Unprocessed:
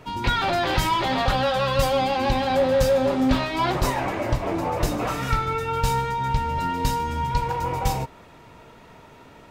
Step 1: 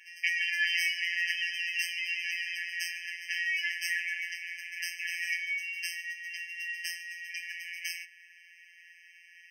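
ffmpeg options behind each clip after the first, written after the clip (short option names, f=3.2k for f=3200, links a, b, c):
-af "aemphasis=mode=reproduction:type=cd,afftfilt=real='hypot(re,im)*cos(PI*b)':imag='0':win_size=1024:overlap=0.75,afftfilt=real='re*eq(mod(floor(b*sr/1024/1600),2),1)':imag='im*eq(mod(floor(b*sr/1024/1600),2),1)':win_size=1024:overlap=0.75,volume=7.5dB"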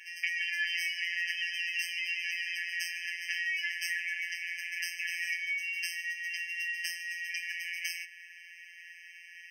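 -af "acompressor=threshold=-38dB:ratio=2.5,volume=5dB"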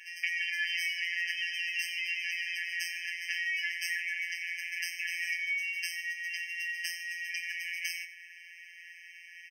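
-af "aecho=1:1:88:0.251"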